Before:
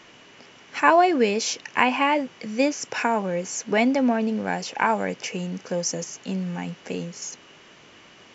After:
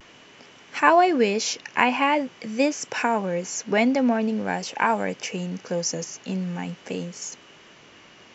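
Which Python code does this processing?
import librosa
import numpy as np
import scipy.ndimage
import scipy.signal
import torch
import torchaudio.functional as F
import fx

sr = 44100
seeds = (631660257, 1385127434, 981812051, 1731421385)

y = fx.vibrato(x, sr, rate_hz=0.46, depth_cents=27.0)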